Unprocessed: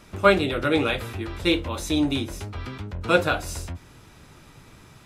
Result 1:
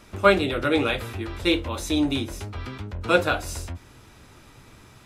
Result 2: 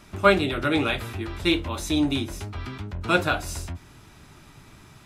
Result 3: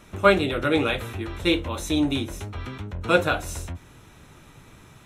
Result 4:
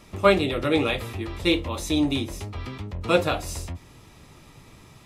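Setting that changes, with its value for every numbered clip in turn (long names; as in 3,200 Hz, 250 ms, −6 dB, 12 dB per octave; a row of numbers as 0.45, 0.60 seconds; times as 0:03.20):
notch filter, centre frequency: 160, 500, 4,800, 1,500 Hertz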